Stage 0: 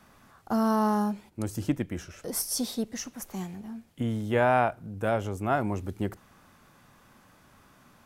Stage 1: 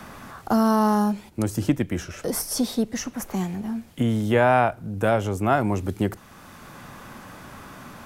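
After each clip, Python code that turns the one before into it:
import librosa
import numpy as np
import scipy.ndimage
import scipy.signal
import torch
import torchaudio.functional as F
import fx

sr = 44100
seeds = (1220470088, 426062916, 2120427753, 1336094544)

y = fx.band_squash(x, sr, depth_pct=40)
y = y * librosa.db_to_amplitude(6.5)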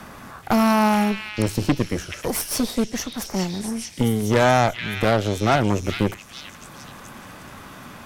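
y = fx.cheby_harmonics(x, sr, harmonics=(8,), levels_db=(-17,), full_scale_db=-6.5)
y = fx.echo_stepped(y, sr, ms=427, hz=2700.0, octaves=0.7, feedback_pct=70, wet_db=-1)
y = y * librosa.db_to_amplitude(1.0)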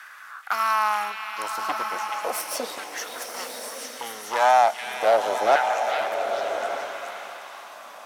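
y = fx.filter_lfo_highpass(x, sr, shape='saw_down', hz=0.36, low_hz=540.0, high_hz=1600.0, q=3.3)
y = fx.rev_bloom(y, sr, seeds[0], attack_ms=1220, drr_db=4.5)
y = y * librosa.db_to_amplitude(-5.5)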